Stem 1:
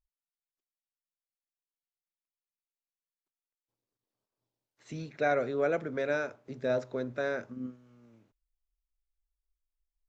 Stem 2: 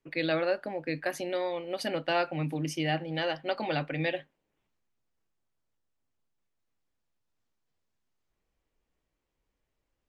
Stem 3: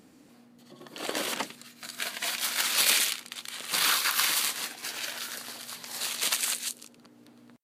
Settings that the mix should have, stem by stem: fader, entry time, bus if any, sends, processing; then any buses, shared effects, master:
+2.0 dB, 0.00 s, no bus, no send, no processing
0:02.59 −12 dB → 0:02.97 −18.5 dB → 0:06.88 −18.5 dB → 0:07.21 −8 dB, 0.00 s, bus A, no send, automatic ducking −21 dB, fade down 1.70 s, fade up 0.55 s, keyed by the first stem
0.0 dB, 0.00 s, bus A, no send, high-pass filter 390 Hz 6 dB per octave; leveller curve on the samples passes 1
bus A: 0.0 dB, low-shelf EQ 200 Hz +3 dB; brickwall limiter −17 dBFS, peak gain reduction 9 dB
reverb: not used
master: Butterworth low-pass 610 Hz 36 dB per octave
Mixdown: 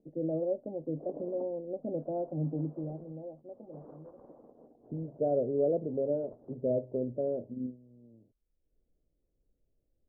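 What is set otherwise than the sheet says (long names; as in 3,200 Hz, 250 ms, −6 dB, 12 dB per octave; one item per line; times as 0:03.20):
stem 2 −12.0 dB → −2.0 dB
stem 3 0.0 dB → −7.0 dB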